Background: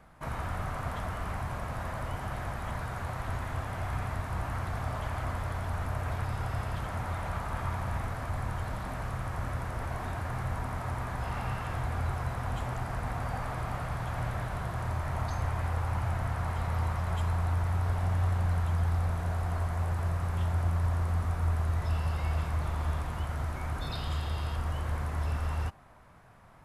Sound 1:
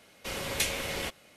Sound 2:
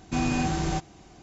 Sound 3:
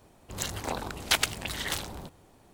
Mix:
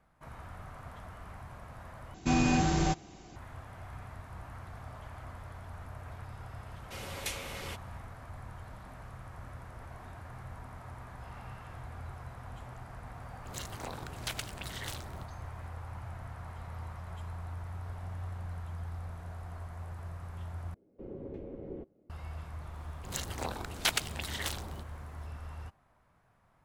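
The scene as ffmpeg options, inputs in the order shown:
-filter_complex "[1:a]asplit=2[a][b];[3:a]asplit=2[c][d];[0:a]volume=-12dB[e];[c]acompressor=threshold=-37dB:ratio=2:attack=28:release=27:knee=1:detection=peak[f];[b]lowpass=f=360:t=q:w=2.5[g];[e]asplit=3[h][i][j];[h]atrim=end=2.144[k];[2:a]atrim=end=1.22,asetpts=PTS-STARTPTS,volume=-0.5dB[l];[i]atrim=start=3.356:end=20.744[m];[g]atrim=end=1.36,asetpts=PTS-STARTPTS,volume=-6.5dB[n];[j]atrim=start=22.096[o];[a]atrim=end=1.36,asetpts=PTS-STARTPTS,volume=-8.5dB,afade=t=in:d=0.004:c=hsin,afade=t=out:st=1.356:d=0.004:c=hsin,adelay=293706S[p];[f]atrim=end=2.53,asetpts=PTS-STARTPTS,volume=-8dB,afade=t=in:d=0.004:c=hsin,afade=t=out:st=2.526:d=0.004:c=hsin,adelay=580356S[q];[d]atrim=end=2.53,asetpts=PTS-STARTPTS,volume=-4.5dB,afade=t=in:d=0.004:c=hsin,afade=t=out:st=2.526:d=0.004:c=hsin,adelay=22740[r];[k][l]acrossfade=d=0.004:c1=hsin:c2=hsin[s];[s][m]acrossfade=d=0.004:c1=hsin:c2=hsin[t];[t][n]acrossfade=d=0.004:c1=hsin:c2=hsin[u];[u][o]acrossfade=d=0.004:c1=hsin:c2=hsin[v];[v][p][q][r]amix=inputs=4:normalize=0"

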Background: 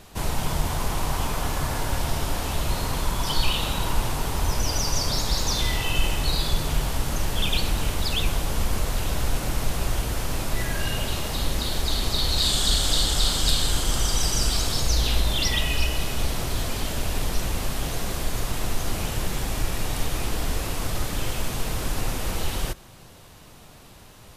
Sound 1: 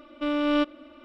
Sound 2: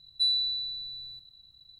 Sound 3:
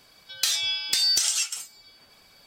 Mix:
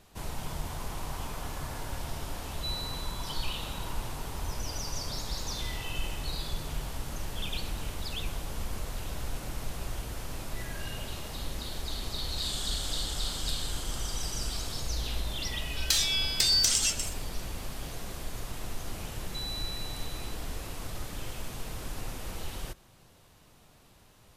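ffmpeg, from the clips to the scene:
-filter_complex "[2:a]asplit=2[a][b];[0:a]volume=-11dB[c];[3:a]aecho=1:1:124:0.158[d];[b]alimiter=level_in=3.5dB:limit=-24dB:level=0:latency=1:release=71,volume=-3.5dB[e];[a]atrim=end=1.79,asetpts=PTS-STARTPTS,volume=-12dB,afade=t=in:d=0.004:c=hsin,afade=t=out:st=1.786:d=0.004:c=hsin,adelay=2430[f];[d]atrim=end=2.46,asetpts=PTS-STARTPTS,volume=-2dB,afade=t=in:d=0.004:c=hsin,afade=t=out:st=2.456:d=0.004:c=hsin,adelay=15470[g];[e]atrim=end=1.79,asetpts=PTS-STARTPTS,volume=-8dB,afade=t=in:d=0.004:c=hsin,afade=t=out:st=1.786:d=0.004:c=hsin,adelay=19150[h];[c][f][g][h]amix=inputs=4:normalize=0"

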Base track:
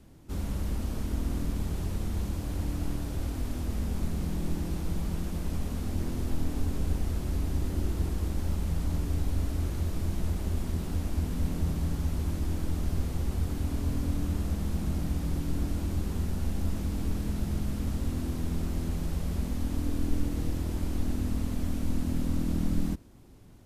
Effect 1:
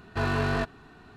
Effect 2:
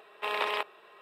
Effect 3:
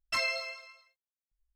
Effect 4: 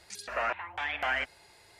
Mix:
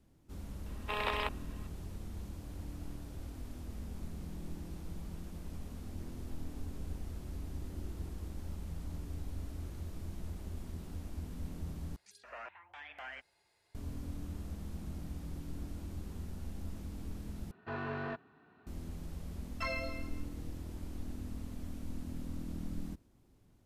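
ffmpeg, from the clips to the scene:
-filter_complex "[0:a]volume=-12.5dB[a];[1:a]highpass=130,lowpass=2.5k[b];[3:a]lowpass=f=1.1k:p=1[c];[a]asplit=3[d][e][f];[d]atrim=end=11.964[g];[4:a]atrim=end=1.79,asetpts=PTS-STARTPTS,volume=-16.5dB[h];[e]atrim=start=13.746:end=17.514[i];[b]atrim=end=1.16,asetpts=PTS-STARTPTS,volume=-11dB[j];[f]atrim=start=18.666[k];[2:a]atrim=end=1.01,asetpts=PTS-STARTPTS,volume=-4.5dB,afade=t=in:d=0.004:c=hsin,afade=t=out:st=1.006:d=0.004:c=hsin,adelay=660[l];[c]atrim=end=1.55,asetpts=PTS-STARTPTS,volume=-1dB,afade=t=in:d=0.004:c=hsin,afade=t=out:st=1.546:d=0.004:c=hsin,adelay=19480[m];[g][h]acrossfade=d=0.004:c1=hsin:c2=hsin[n];[n][i]acrossfade=d=0.004:c1=hsin:c2=hsin[o];[o][j]acrossfade=d=0.004:c1=hsin:c2=hsin[p];[p][k]acrossfade=d=0.004:c1=hsin:c2=hsin[q];[q][l][m]amix=inputs=3:normalize=0"

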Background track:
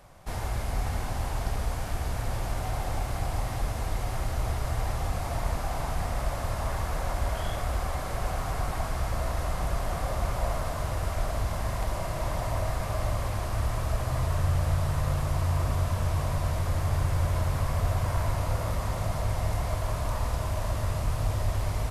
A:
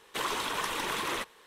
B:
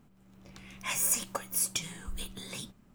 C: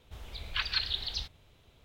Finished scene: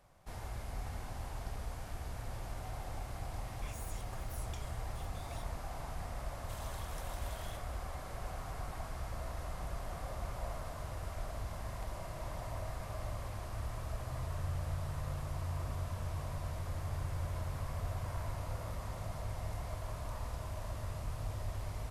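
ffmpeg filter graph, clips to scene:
-filter_complex "[0:a]volume=-12dB[a];[2:a]acompressor=threshold=-42dB:ratio=4:attack=23:release=39:knee=1:detection=peak[b];[1:a]aderivative[c];[b]atrim=end=2.94,asetpts=PTS-STARTPTS,volume=-14dB,afade=t=in:d=0.004:c=hsin,afade=t=out:st=2.936:d=0.004:c=hsin,adelay=2780[d];[c]atrim=end=1.46,asetpts=PTS-STARTPTS,volume=-14dB,afade=t=in:d=0.004:c=hsin,afade=t=out:st=1.456:d=0.004:c=hsin,adelay=279594S[e];[a][d][e]amix=inputs=3:normalize=0"

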